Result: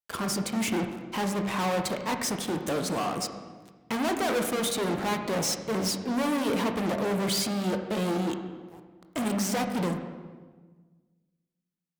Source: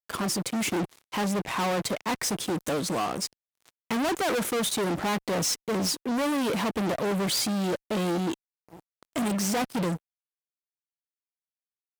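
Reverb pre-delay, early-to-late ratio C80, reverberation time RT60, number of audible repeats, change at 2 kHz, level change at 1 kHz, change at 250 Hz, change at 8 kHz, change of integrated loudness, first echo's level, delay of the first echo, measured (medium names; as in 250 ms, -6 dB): 19 ms, 8.5 dB, 1.4 s, no echo, -1.0 dB, -0.5 dB, -0.5 dB, -2.0 dB, -1.0 dB, no echo, no echo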